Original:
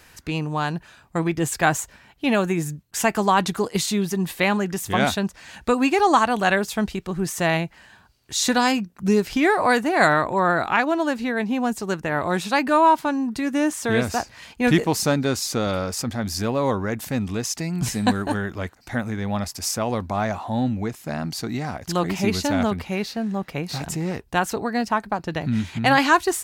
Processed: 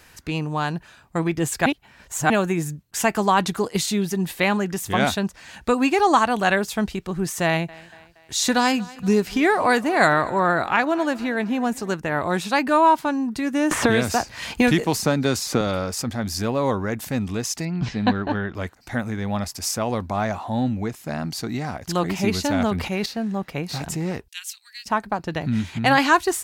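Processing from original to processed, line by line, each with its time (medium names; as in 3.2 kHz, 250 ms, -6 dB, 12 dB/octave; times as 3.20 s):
1.66–2.30 s: reverse
3.78–4.33 s: band-stop 1.1 kHz, Q 7.4
7.45–11.92 s: thinning echo 235 ms, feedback 54%, high-pass 200 Hz, level -21 dB
13.71–15.61 s: three bands compressed up and down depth 100%
17.65–18.55 s: low-pass 4.2 kHz 24 dB/octave
22.59–23.06 s: decay stretcher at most 56 dB/s
24.28–24.86 s: inverse Chebyshev high-pass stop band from 580 Hz, stop band 70 dB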